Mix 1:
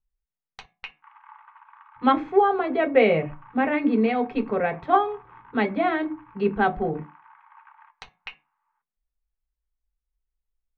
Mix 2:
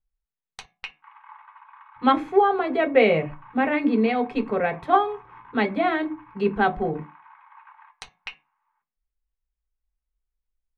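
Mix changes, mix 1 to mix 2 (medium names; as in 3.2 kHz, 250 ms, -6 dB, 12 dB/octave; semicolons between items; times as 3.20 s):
background: send +6.5 dB; master: remove distance through air 150 m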